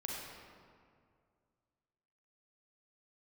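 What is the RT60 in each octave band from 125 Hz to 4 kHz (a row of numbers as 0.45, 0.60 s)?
2.6, 2.4, 2.3, 2.1, 1.7, 1.2 s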